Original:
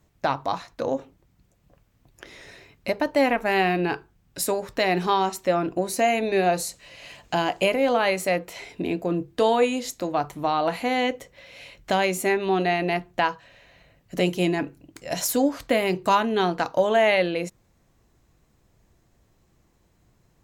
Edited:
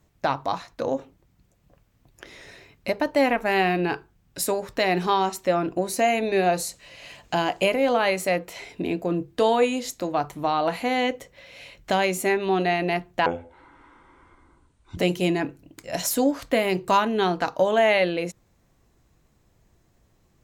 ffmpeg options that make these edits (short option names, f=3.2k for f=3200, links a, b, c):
-filter_complex "[0:a]asplit=3[a][b][c];[a]atrim=end=13.264[d];[b]atrim=start=13.26:end=14.15,asetpts=PTS-STARTPTS,asetrate=22932,aresample=44100[e];[c]atrim=start=14.146[f];[d][e]acrossfade=d=0.004:c1=hsin:c2=hsin[g];[g][f]acrossfade=d=0.004:c1=hsin:c2=hsin"